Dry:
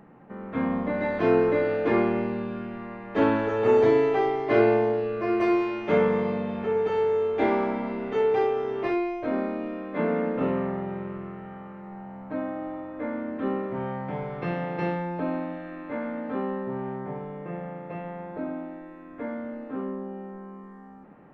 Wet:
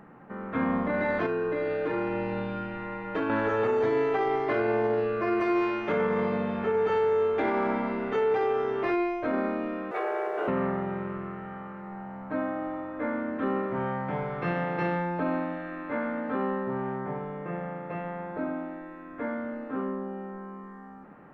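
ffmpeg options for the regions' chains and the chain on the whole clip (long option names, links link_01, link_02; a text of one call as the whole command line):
ffmpeg -i in.wav -filter_complex "[0:a]asettb=1/sr,asplit=3[link_01][link_02][link_03];[link_01]atrim=end=1.264[link_04];[link_02]atrim=start=1.26:end=3.3,asetpts=PTS-STARTPTS,afade=type=in:duration=0.004:curve=qsin,afade=type=out:start_time=2.036:duration=0.004:curve=qsin,aecho=1:1:6.4:0.8,atrim=end_sample=89964,acompressor=threshold=-26dB:ratio=8:attack=3.2:release=140:knee=1:detection=peak[link_05];[link_03]atrim=start=3.296[link_06];[link_04][link_05]acrossfade=duration=0.004:curve1=hsin:curve2=qsin[link_07];[link_07][link_06]acrossfade=duration=0.004:curve1=qsin:curve2=hsin,asettb=1/sr,asplit=3[link_08][link_09][link_10];[link_08]atrim=end=9.914[link_11];[link_09]atrim=start=9.91:end=10.48,asetpts=PTS-STARTPTS,afade=type=in:duration=0.004:curve=qsin,afade=type=out:start_time=0.566:duration=0.004:curve=qsin,acompressor=threshold=-28dB:ratio=3:attack=3.2:release=140:knee=1:detection=peak,aeval=exprs='sgn(val(0))*max(abs(val(0))-0.00106,0)':channel_layout=same,afreqshift=170[link_12];[link_10]atrim=start=10.476[link_13];[link_11][link_12]acrossfade=duration=0.004:curve1=hsin:curve2=qsin[link_14];[link_14][link_13]acrossfade=duration=0.004:curve1=qsin:curve2=hsin,equalizer=frequency=1400:width_type=o:width=1:gain=6,alimiter=limit=-18.5dB:level=0:latency=1:release=34" out.wav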